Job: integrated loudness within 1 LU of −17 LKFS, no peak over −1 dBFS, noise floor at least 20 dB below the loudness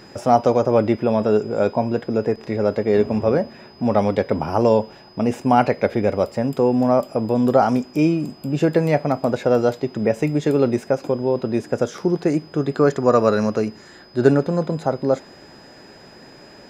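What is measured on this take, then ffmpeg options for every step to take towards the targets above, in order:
interfering tone 5,000 Hz; level of the tone −49 dBFS; integrated loudness −20.0 LKFS; sample peak −2.0 dBFS; target loudness −17.0 LKFS
→ -af "bandreject=frequency=5000:width=30"
-af "volume=3dB,alimiter=limit=-1dB:level=0:latency=1"

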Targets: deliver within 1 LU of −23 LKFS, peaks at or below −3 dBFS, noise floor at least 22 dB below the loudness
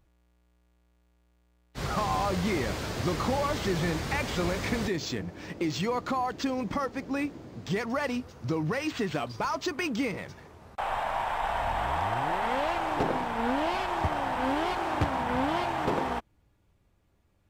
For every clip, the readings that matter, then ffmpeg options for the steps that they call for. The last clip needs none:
integrated loudness −30.0 LKFS; sample peak −15.5 dBFS; target loudness −23.0 LKFS
→ -af "volume=7dB"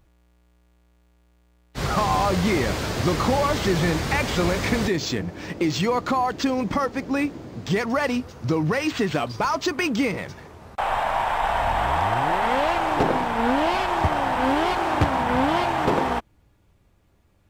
integrated loudness −23.0 LKFS; sample peak −8.5 dBFS; background noise floor −60 dBFS

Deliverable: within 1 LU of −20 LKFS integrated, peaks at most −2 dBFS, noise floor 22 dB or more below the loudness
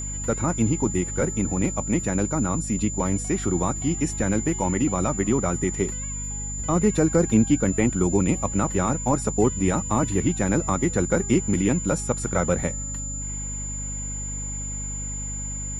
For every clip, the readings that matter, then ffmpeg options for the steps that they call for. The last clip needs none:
mains hum 50 Hz; hum harmonics up to 250 Hz; level of the hum −31 dBFS; interfering tone 7,100 Hz; level of the tone −31 dBFS; integrated loudness −24.0 LKFS; sample peak −7.5 dBFS; target loudness −20.0 LKFS
→ -af "bandreject=frequency=50:width_type=h:width=6,bandreject=frequency=100:width_type=h:width=6,bandreject=frequency=150:width_type=h:width=6,bandreject=frequency=200:width_type=h:width=6,bandreject=frequency=250:width_type=h:width=6"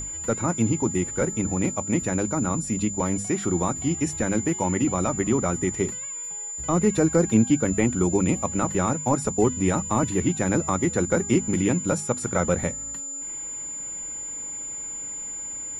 mains hum none found; interfering tone 7,100 Hz; level of the tone −31 dBFS
→ -af "bandreject=frequency=7100:width=30"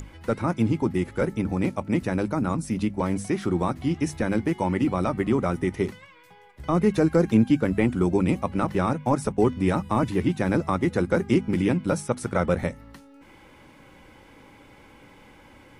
interfering tone none found; integrated loudness −24.5 LKFS; sample peak −8.0 dBFS; target loudness −20.0 LKFS
→ -af "volume=4.5dB"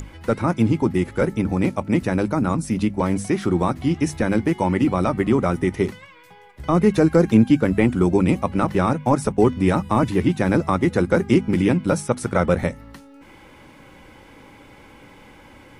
integrated loudness −20.0 LKFS; sample peak −3.5 dBFS; background noise floor −47 dBFS

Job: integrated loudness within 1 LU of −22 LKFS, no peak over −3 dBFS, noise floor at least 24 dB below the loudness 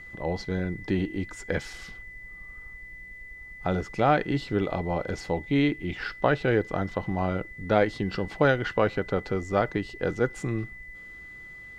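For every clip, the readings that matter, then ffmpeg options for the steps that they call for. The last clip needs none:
interfering tone 2,000 Hz; level of the tone −42 dBFS; integrated loudness −27.5 LKFS; sample peak −7.0 dBFS; target loudness −22.0 LKFS
→ -af "bandreject=frequency=2000:width=30"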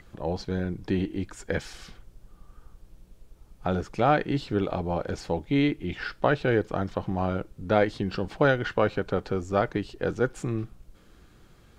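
interfering tone none found; integrated loudness −28.0 LKFS; sample peak −7.0 dBFS; target loudness −22.0 LKFS
→ -af "volume=6dB,alimiter=limit=-3dB:level=0:latency=1"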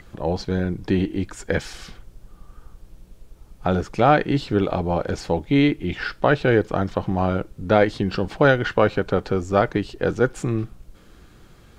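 integrated loudness −22.0 LKFS; sample peak −3.0 dBFS; background noise floor −50 dBFS

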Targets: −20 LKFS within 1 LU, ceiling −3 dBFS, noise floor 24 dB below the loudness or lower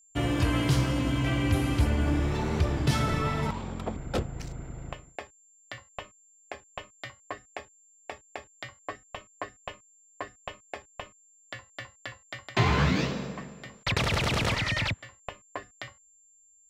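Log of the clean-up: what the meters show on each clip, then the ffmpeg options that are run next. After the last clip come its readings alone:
interfering tone 7,300 Hz; level of the tone −58 dBFS; integrated loudness −28.5 LKFS; sample peak −14.0 dBFS; target loudness −20.0 LKFS
→ -af "bandreject=frequency=7300:width=30"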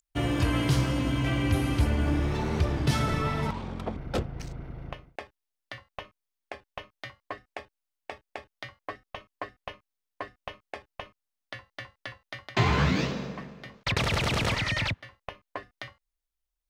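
interfering tone none found; integrated loudness −28.5 LKFS; sample peak −14.0 dBFS; target loudness −20.0 LKFS
→ -af "volume=8.5dB"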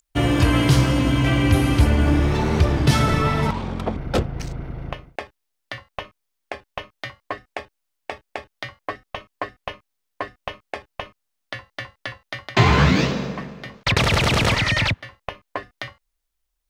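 integrated loudness −20.0 LKFS; sample peak −5.5 dBFS; background noise floor −77 dBFS

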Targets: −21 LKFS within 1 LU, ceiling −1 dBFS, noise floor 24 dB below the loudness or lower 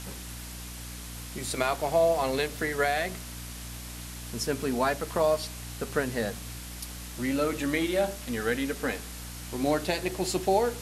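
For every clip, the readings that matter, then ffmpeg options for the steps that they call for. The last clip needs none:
mains hum 60 Hz; hum harmonics up to 300 Hz; level of the hum −40 dBFS; background noise floor −41 dBFS; target noise floor −54 dBFS; integrated loudness −30.0 LKFS; sample peak −11.0 dBFS; target loudness −21.0 LKFS
→ -af "bandreject=frequency=60:width_type=h:width=6,bandreject=frequency=120:width_type=h:width=6,bandreject=frequency=180:width_type=h:width=6,bandreject=frequency=240:width_type=h:width=6,bandreject=frequency=300:width_type=h:width=6"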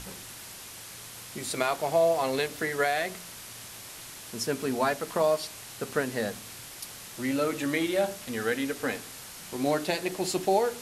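mains hum none found; background noise floor −44 dBFS; target noise floor −53 dBFS
→ -af "afftdn=noise_reduction=9:noise_floor=-44"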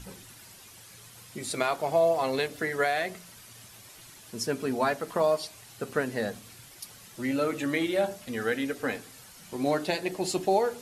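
background noise floor −51 dBFS; target noise floor −53 dBFS
→ -af "afftdn=noise_reduction=6:noise_floor=-51"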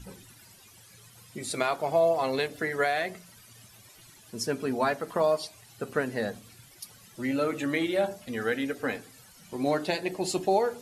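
background noise floor −54 dBFS; integrated loudness −29.0 LKFS; sample peak −11.0 dBFS; target loudness −21.0 LKFS
→ -af "volume=8dB"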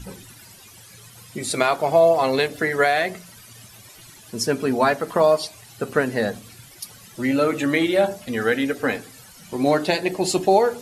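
integrated loudness −21.0 LKFS; sample peak −3.0 dBFS; background noise floor −46 dBFS

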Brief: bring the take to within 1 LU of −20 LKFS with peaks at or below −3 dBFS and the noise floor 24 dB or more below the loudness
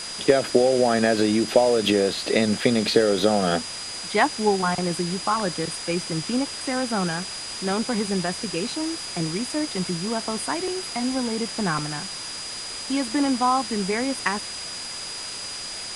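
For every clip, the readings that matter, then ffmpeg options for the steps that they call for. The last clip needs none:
interfering tone 4,900 Hz; level of the tone −34 dBFS; background noise floor −34 dBFS; target noise floor −48 dBFS; integrated loudness −24.0 LKFS; sample peak −4.0 dBFS; target loudness −20.0 LKFS
→ -af "bandreject=frequency=4900:width=30"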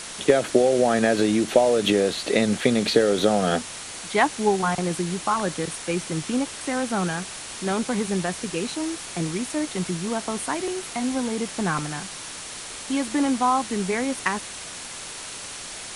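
interfering tone none found; background noise floor −37 dBFS; target noise floor −49 dBFS
→ -af "afftdn=noise_reduction=12:noise_floor=-37"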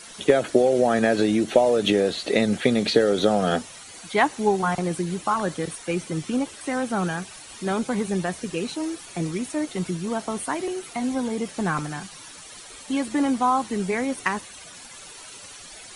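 background noise floor −43 dBFS; target noise floor −48 dBFS
→ -af "afftdn=noise_reduction=6:noise_floor=-43"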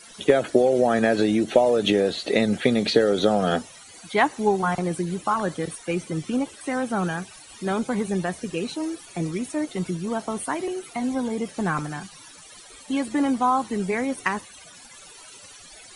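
background noise floor −46 dBFS; target noise floor −48 dBFS
→ -af "afftdn=noise_reduction=6:noise_floor=-46"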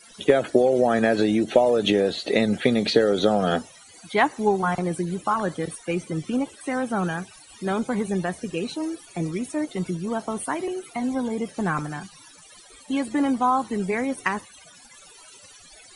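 background noise floor −49 dBFS; integrated loudness −24.0 LKFS; sample peak −4.0 dBFS; target loudness −20.0 LKFS
→ -af "volume=4dB,alimiter=limit=-3dB:level=0:latency=1"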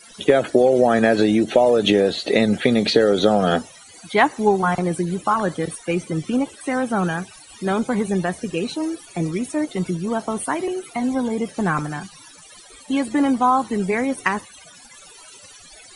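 integrated loudness −20.5 LKFS; sample peak −3.0 dBFS; background noise floor −45 dBFS

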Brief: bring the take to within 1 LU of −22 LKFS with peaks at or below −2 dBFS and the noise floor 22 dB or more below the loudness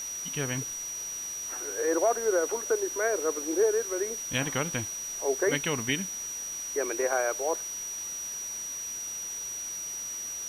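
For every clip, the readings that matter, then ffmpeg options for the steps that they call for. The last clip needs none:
interfering tone 5,800 Hz; level of the tone −34 dBFS; background noise floor −37 dBFS; target noise floor −52 dBFS; integrated loudness −29.5 LKFS; sample peak −13.0 dBFS; target loudness −22.0 LKFS
→ -af "bandreject=frequency=5800:width=30"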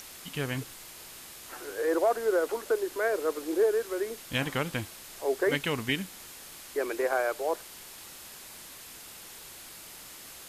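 interfering tone none found; background noise floor −47 dBFS; target noise floor −52 dBFS
→ -af "afftdn=noise_reduction=6:noise_floor=-47"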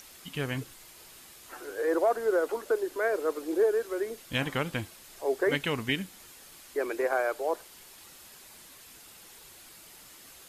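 background noise floor −52 dBFS; integrated loudness −30.0 LKFS; sample peak −14.0 dBFS; target loudness −22.0 LKFS
→ -af "volume=8dB"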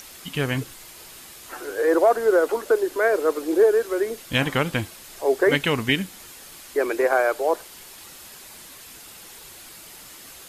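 integrated loudness −22.0 LKFS; sample peak −6.0 dBFS; background noise floor −44 dBFS

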